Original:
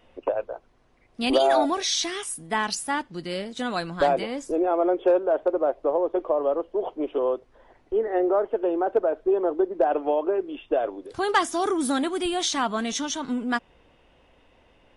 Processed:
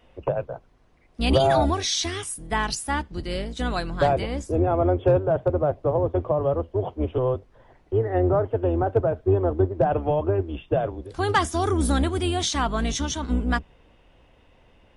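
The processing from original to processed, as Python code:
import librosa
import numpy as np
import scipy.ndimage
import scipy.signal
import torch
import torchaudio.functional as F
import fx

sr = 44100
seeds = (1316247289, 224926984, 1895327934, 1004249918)

y = fx.octave_divider(x, sr, octaves=2, level_db=4.0)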